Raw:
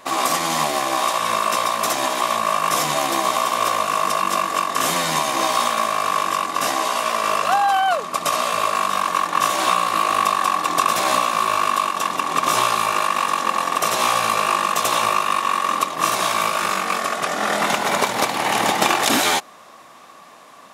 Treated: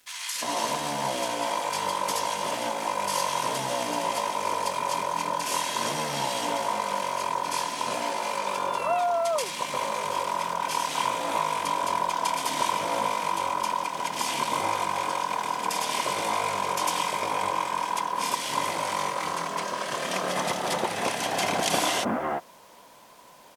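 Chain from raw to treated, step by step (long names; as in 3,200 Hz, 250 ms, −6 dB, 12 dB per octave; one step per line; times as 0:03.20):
multiband delay without the direct sound highs, lows 310 ms, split 1,800 Hz
bit-depth reduction 8 bits, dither none
speed change −12%
level −7 dB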